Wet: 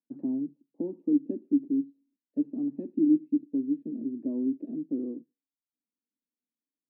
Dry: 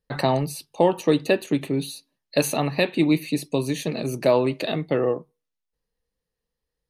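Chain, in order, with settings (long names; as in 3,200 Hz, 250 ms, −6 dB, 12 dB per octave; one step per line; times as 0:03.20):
flat-topped band-pass 270 Hz, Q 3.2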